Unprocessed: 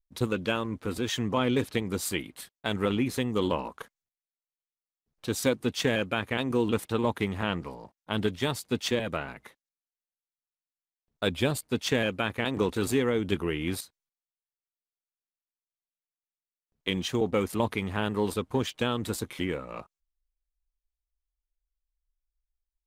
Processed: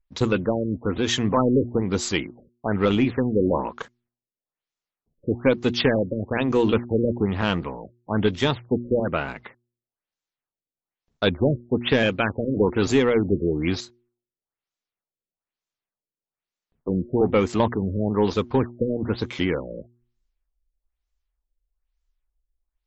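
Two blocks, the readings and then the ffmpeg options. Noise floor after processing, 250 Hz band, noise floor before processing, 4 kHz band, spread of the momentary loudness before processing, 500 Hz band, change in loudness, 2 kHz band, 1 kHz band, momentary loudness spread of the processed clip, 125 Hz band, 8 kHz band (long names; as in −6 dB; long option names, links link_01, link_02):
below −85 dBFS, +7.0 dB, below −85 dBFS, +3.0 dB, 9 LU, +7.0 dB, +6.0 dB, +3.5 dB, +5.0 dB, 10 LU, +6.5 dB, 0.0 dB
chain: -af "bandreject=frequency=119.7:width_type=h:width=4,bandreject=frequency=239.4:width_type=h:width=4,bandreject=frequency=359.1:width_type=h:width=4,aeval=exprs='(tanh(5.62*val(0)+0.1)-tanh(0.1))/5.62':channel_layout=same,afftfilt=real='re*lt(b*sr/1024,570*pow(8000/570,0.5+0.5*sin(2*PI*1.1*pts/sr)))':imag='im*lt(b*sr/1024,570*pow(8000/570,0.5+0.5*sin(2*PI*1.1*pts/sr)))':win_size=1024:overlap=0.75,volume=8dB"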